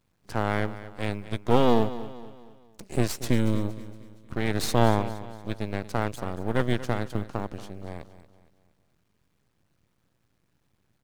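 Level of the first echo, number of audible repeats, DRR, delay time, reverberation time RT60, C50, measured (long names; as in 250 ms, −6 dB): −15.0 dB, 3, no reverb audible, 233 ms, no reverb audible, no reverb audible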